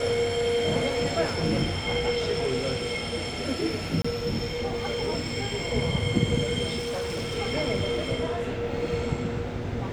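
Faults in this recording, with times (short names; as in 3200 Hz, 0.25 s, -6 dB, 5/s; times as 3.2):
4.02–4.04 gap 25 ms
6.78–7.38 clipped -27.5 dBFS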